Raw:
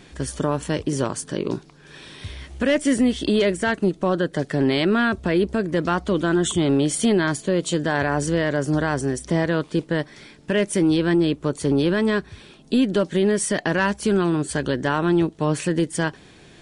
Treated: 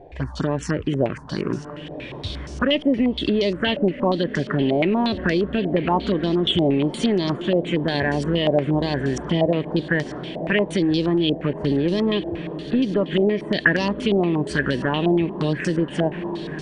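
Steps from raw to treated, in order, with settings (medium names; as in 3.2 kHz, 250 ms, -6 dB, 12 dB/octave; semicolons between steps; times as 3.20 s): touch-sensitive phaser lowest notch 200 Hz, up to 1.5 kHz, full sweep at -16.5 dBFS; echo that smears into a reverb 1153 ms, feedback 62%, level -15 dB; compression 2.5:1, threshold -24 dBFS, peak gain reduction 6.5 dB; step-sequenced low-pass 8.5 Hz 710–5600 Hz; trim +4.5 dB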